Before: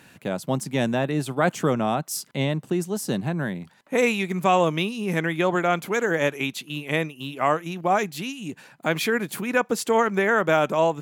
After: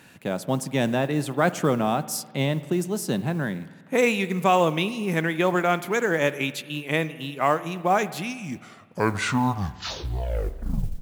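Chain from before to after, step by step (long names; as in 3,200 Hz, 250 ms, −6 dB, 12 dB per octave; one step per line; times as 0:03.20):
turntable brake at the end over 2.91 s
noise that follows the level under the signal 31 dB
spring reverb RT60 1.6 s, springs 50 ms, chirp 50 ms, DRR 15 dB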